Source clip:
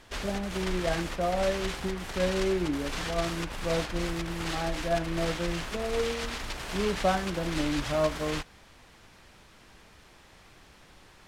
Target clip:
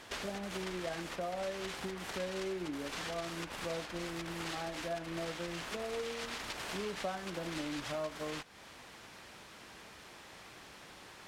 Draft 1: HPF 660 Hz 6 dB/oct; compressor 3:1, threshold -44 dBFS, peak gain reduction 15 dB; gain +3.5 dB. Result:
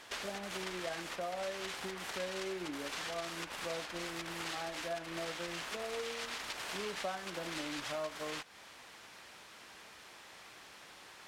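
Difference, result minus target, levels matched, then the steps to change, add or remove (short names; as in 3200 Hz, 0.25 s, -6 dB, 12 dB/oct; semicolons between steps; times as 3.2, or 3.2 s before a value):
250 Hz band -3.5 dB
change: HPF 220 Hz 6 dB/oct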